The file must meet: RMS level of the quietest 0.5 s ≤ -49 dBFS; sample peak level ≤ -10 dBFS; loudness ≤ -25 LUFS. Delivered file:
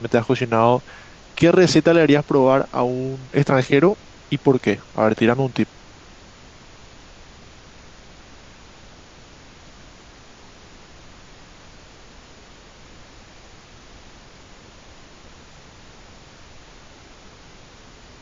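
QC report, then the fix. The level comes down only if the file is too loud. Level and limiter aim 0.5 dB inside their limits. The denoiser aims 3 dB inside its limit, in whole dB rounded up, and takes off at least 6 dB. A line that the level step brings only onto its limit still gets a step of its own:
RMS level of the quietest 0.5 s -45 dBFS: fail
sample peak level -3.0 dBFS: fail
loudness -18.0 LUFS: fail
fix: gain -7.5 dB

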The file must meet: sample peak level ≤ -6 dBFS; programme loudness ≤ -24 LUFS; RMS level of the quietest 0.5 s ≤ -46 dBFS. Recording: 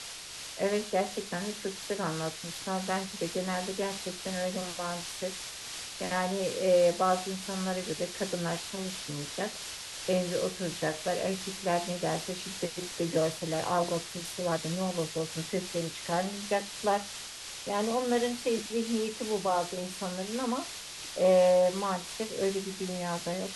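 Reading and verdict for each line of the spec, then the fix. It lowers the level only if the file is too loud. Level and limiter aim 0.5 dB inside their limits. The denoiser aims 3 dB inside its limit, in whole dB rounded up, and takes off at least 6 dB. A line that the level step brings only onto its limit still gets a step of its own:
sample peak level -13.5 dBFS: OK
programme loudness -31.5 LUFS: OK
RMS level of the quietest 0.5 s -43 dBFS: fail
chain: denoiser 6 dB, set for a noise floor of -43 dBFS

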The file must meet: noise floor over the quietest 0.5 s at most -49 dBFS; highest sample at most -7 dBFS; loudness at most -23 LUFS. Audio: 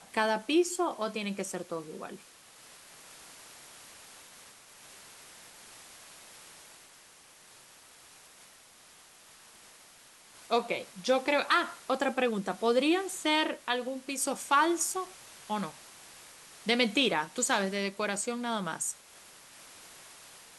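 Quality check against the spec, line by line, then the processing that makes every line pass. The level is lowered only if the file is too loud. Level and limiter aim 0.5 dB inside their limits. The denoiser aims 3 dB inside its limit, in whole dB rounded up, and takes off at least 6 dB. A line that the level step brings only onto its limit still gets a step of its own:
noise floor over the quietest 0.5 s -57 dBFS: OK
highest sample -12.5 dBFS: OK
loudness -30.0 LUFS: OK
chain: none

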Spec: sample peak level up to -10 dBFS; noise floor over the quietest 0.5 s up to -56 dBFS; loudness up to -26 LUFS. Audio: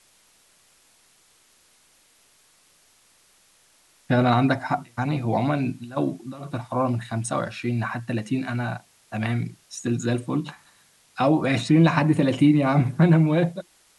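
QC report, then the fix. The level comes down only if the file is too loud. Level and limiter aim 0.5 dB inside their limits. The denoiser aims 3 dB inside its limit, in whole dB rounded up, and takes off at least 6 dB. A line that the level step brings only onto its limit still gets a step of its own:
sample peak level -6.5 dBFS: fail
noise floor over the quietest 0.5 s -60 dBFS: OK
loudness -23.0 LUFS: fail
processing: gain -3.5 dB; limiter -10.5 dBFS

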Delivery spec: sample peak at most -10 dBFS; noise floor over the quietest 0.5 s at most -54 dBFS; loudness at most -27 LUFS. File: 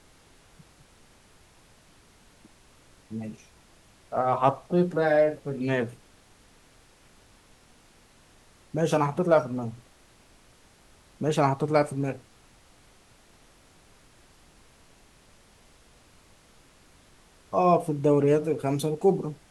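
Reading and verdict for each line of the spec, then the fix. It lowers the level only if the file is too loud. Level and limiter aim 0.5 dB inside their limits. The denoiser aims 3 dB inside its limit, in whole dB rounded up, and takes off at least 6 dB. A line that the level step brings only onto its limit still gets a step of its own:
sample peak -7.0 dBFS: fail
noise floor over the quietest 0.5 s -57 dBFS: OK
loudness -25.5 LUFS: fail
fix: gain -2 dB; limiter -10.5 dBFS

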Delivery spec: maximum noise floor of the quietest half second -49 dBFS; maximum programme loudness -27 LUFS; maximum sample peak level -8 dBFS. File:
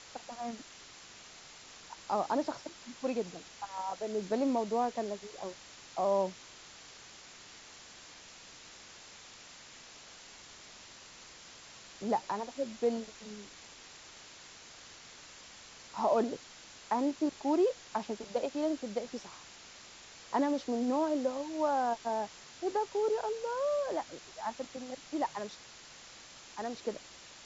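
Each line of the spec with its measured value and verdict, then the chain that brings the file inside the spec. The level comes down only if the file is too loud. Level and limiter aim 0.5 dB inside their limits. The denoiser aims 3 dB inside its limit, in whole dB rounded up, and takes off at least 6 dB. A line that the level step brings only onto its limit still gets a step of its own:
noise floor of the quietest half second -53 dBFS: OK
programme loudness -34.5 LUFS: OK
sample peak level -18.0 dBFS: OK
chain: none

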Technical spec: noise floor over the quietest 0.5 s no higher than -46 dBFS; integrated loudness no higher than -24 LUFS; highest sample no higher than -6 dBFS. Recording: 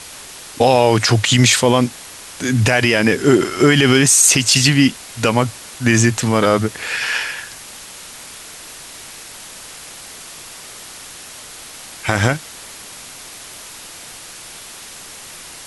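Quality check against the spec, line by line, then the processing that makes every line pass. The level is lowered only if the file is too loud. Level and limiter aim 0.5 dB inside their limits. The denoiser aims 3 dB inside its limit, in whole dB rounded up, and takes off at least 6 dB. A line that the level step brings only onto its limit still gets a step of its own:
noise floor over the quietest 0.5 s -36 dBFS: fail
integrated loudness -14.5 LUFS: fail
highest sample -1.0 dBFS: fail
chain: denoiser 6 dB, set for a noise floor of -36 dBFS; gain -10 dB

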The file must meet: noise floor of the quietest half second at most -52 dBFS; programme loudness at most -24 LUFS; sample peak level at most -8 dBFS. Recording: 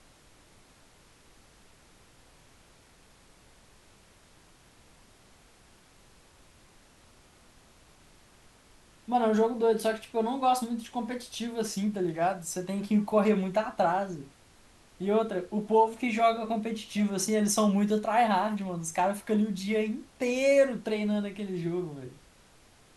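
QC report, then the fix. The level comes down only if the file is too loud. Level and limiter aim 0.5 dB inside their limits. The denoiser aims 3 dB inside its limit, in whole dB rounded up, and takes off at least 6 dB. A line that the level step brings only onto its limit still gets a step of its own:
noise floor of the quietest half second -58 dBFS: OK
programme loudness -28.5 LUFS: OK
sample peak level -11.5 dBFS: OK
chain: none

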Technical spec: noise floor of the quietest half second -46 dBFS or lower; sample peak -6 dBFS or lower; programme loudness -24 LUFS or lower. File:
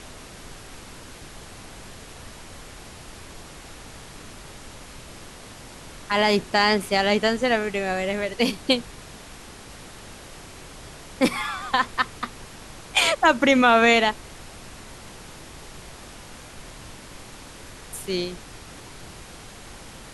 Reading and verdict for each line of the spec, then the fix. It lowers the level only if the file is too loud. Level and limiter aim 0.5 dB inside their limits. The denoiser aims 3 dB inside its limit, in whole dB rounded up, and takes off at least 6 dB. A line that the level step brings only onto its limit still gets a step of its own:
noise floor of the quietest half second -42 dBFS: fail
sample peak -5.0 dBFS: fail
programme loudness -21.5 LUFS: fail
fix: denoiser 6 dB, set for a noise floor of -42 dBFS; gain -3 dB

